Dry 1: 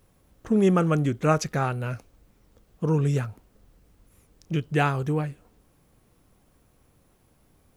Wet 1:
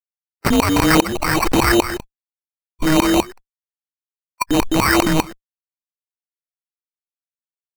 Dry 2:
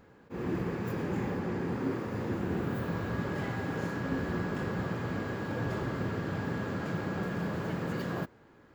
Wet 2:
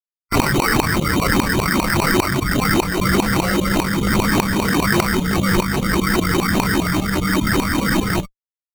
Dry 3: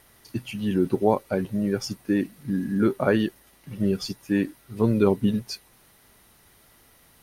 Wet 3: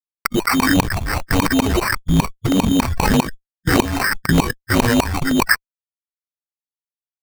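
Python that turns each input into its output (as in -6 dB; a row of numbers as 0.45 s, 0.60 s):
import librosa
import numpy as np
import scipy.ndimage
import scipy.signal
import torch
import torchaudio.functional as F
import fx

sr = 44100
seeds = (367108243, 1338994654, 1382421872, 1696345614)

y = fx.band_shuffle(x, sr, order='2413')
y = fx.fuzz(y, sr, gain_db=44.0, gate_db=-39.0)
y = fx.low_shelf(y, sr, hz=440.0, db=8.5)
y = fx.filter_lfo_lowpass(y, sr, shape='saw_up', hz=5.0, low_hz=900.0, high_hz=3000.0, q=6.9)
y = fx.noise_reduce_blind(y, sr, reduce_db=16)
y = fx.rider(y, sr, range_db=10, speed_s=0.5)
y = fx.sample_hold(y, sr, seeds[0], rate_hz=3400.0, jitter_pct=0)
y = fx.dynamic_eq(y, sr, hz=300.0, q=2.1, threshold_db=-22.0, ratio=4.0, max_db=-3)
y = fx.buffer_crackle(y, sr, first_s=0.97, period_s=0.31, block=64, kind='repeat')
y = fx.pre_swell(y, sr, db_per_s=26.0)
y = F.gain(torch.from_numpy(y), -6.5).numpy()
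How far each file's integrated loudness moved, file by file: +8.0 LU, +16.5 LU, +7.0 LU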